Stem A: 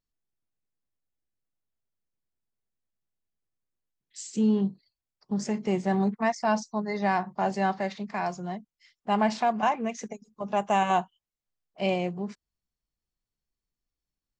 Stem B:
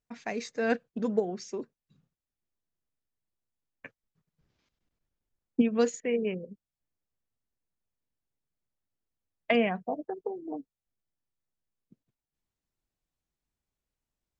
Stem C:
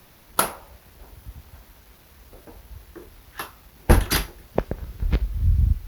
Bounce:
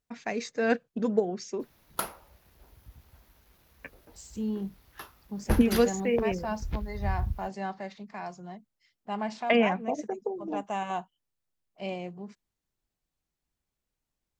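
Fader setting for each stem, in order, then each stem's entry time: -8.5 dB, +2.0 dB, -11.0 dB; 0.00 s, 0.00 s, 1.60 s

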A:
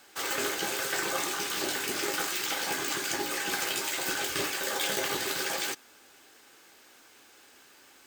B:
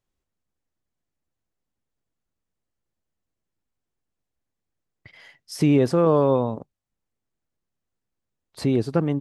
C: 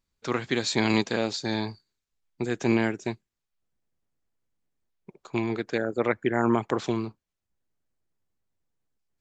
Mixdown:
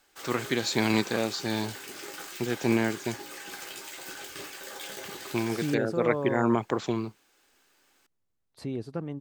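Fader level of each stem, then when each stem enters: -10.0 dB, -12.5 dB, -1.5 dB; 0.00 s, 0.00 s, 0.00 s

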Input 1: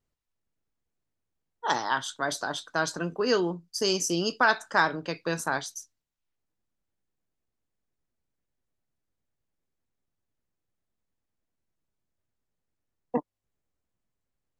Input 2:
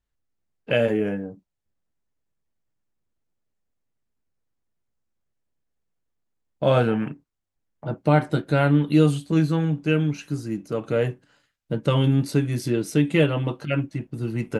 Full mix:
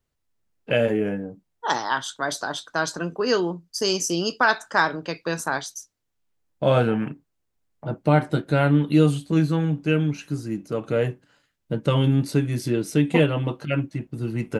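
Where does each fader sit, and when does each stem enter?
+3.0 dB, 0.0 dB; 0.00 s, 0.00 s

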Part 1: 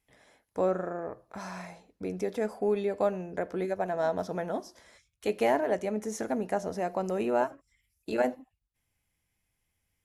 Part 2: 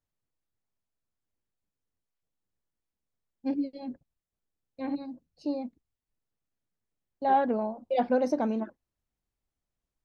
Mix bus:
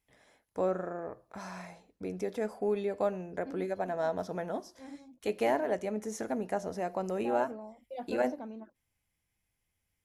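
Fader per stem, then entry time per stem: -3.0 dB, -14.5 dB; 0.00 s, 0.00 s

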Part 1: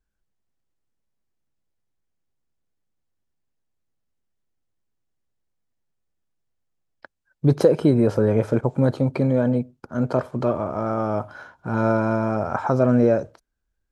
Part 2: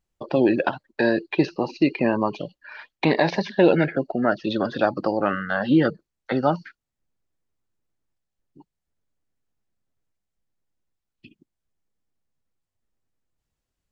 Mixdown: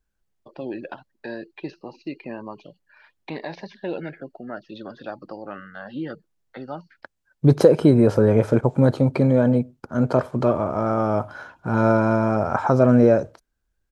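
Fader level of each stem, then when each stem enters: +2.5 dB, -13.0 dB; 0.00 s, 0.25 s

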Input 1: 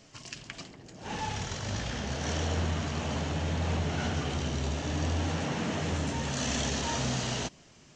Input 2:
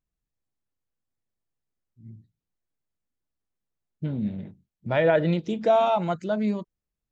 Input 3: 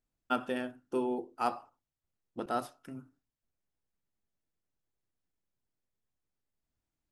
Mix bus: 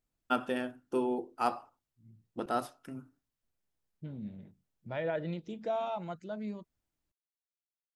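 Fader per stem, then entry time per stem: mute, -13.5 dB, +1.0 dB; mute, 0.00 s, 0.00 s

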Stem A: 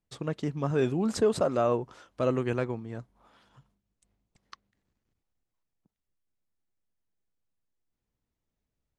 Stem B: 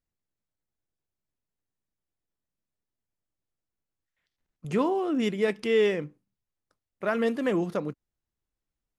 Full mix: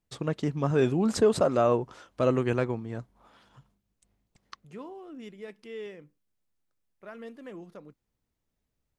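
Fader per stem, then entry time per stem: +2.5 dB, -17.0 dB; 0.00 s, 0.00 s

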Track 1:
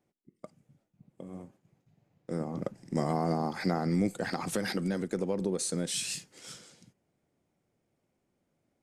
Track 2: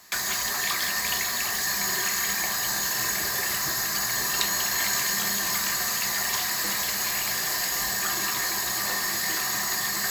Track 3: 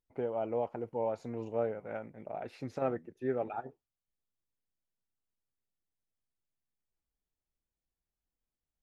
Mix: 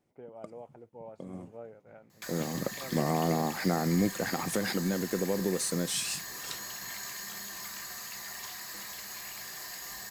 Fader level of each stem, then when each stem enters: +1.0 dB, -15.0 dB, -13.0 dB; 0.00 s, 2.10 s, 0.00 s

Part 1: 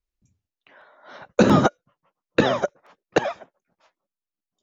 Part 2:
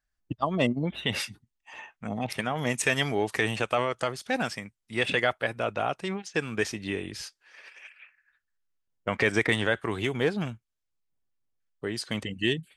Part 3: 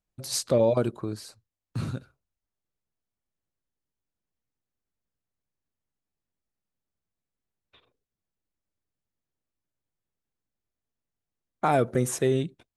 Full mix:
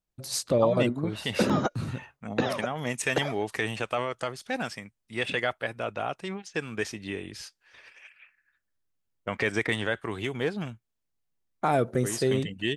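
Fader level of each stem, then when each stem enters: -9.0 dB, -3.0 dB, -1.5 dB; 0.00 s, 0.20 s, 0.00 s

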